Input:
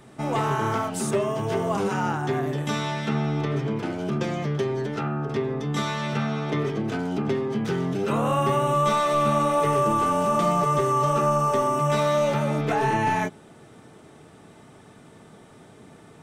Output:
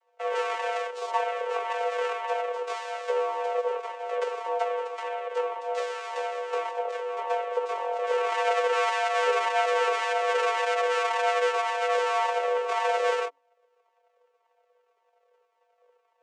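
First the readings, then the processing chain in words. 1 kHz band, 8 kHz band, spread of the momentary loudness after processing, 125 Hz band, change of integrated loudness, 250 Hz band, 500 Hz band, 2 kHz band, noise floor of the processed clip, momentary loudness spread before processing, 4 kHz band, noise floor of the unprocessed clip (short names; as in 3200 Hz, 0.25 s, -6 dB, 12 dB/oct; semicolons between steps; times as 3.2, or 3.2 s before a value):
-2.5 dB, -6.5 dB, 7 LU, under -40 dB, -3.5 dB, under -30 dB, -1.5 dB, +2.5 dB, -71 dBFS, 6 LU, 0.0 dB, -50 dBFS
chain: added harmonics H 7 -16 dB, 8 -13 dB, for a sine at -11 dBFS; vocoder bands 4, saw 212 Hz; frequency shift +280 Hz; cascading flanger falling 1.8 Hz; gain +1.5 dB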